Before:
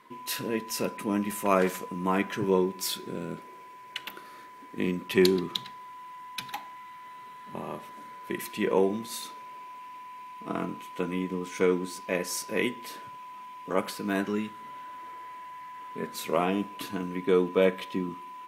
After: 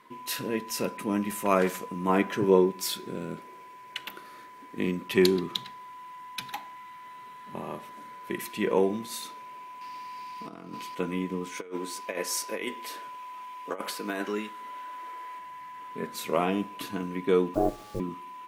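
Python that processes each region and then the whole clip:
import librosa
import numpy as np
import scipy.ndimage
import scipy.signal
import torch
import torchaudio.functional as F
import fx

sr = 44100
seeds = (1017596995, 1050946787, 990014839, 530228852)

y = fx.chain(x, sr, fx.highpass(hz=43.0, slope=12),
    fx.peak_eq(hz=450.0, db=4.5, octaves=2.1), at=(2.09, 2.71))
y = fx.chain(y, sr, fx.peak_eq(hz=4800.0, db=14.0, octaves=0.41),
    fx.over_compress(threshold_db=-40.0, ratio=-1.0), at=(9.81, 10.95))
y = fx.chain(y, sr, fx.highpass(hz=330.0, slope=12),
    fx.over_compress(threshold_db=-31.0, ratio=-0.5), at=(11.57, 15.39))
y = fx.chain(y, sr, fx.lowpass(hz=1000.0, slope=24),
    fx.ring_mod(carrier_hz=160.0),
    fx.quant_dither(seeds[0], bits=8, dither='none'), at=(17.54, 18.0))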